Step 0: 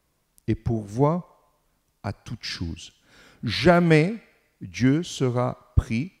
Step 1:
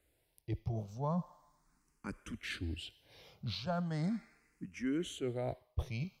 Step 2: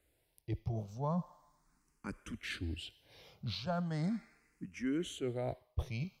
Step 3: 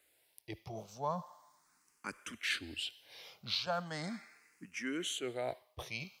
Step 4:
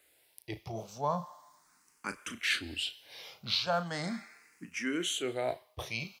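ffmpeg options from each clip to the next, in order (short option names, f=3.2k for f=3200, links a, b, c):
-filter_complex "[0:a]areverse,acompressor=threshold=-28dB:ratio=8,areverse,asplit=2[a][b];[b]afreqshift=0.38[c];[a][c]amix=inputs=2:normalize=1,volume=-2.5dB"
-af anull
-af "highpass=f=1.2k:p=1,volume=8dB"
-filter_complex "[0:a]asplit=2[a][b];[b]adelay=35,volume=-11dB[c];[a][c]amix=inputs=2:normalize=0,volume=4.5dB"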